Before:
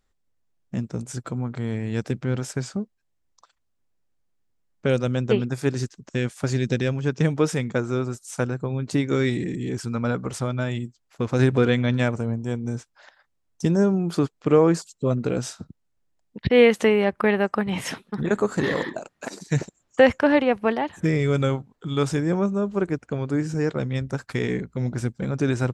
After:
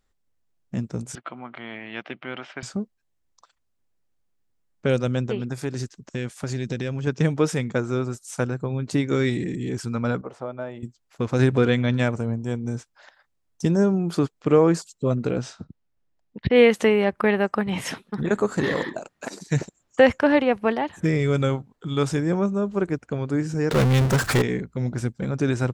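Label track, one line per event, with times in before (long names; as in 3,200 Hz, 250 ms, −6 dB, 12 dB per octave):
1.150000	2.630000	loudspeaker in its box 420–3,400 Hz, peaks and dips at 460 Hz −10 dB, 680 Hz +4 dB, 1,200 Hz +4 dB, 2,100 Hz +6 dB, 3,000 Hz +9 dB
5.270000	7.070000	downward compressor 2.5 to 1, threshold −25 dBFS
10.210000	10.830000	resonant band-pass 650 Hz, Q 1.2
15.310000	16.560000	high-frequency loss of the air 100 metres
23.710000	24.420000	power curve on the samples exponent 0.35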